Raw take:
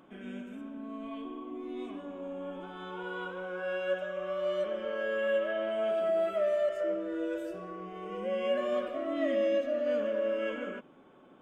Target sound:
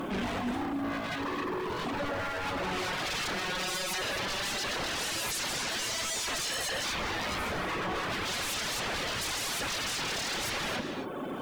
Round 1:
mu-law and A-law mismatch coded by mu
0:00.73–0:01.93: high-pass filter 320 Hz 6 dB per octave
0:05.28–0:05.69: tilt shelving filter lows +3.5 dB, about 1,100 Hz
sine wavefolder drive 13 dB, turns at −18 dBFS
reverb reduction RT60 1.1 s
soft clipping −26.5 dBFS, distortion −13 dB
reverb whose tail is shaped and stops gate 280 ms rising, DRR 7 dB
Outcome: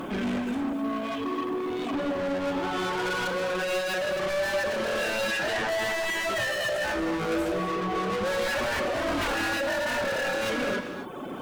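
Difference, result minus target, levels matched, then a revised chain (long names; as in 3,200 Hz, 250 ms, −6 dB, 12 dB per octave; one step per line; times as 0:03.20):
sine wavefolder: distortion −20 dB
mu-law and A-law mismatch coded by mu
0:00.73–0:01.93: high-pass filter 320 Hz 6 dB per octave
0:05.28–0:05.69: tilt shelving filter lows +3.5 dB, about 1,100 Hz
sine wavefolder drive 13 dB, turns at −27.5 dBFS
reverb reduction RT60 1.1 s
soft clipping −26.5 dBFS, distortion −26 dB
reverb whose tail is shaped and stops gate 280 ms rising, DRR 7 dB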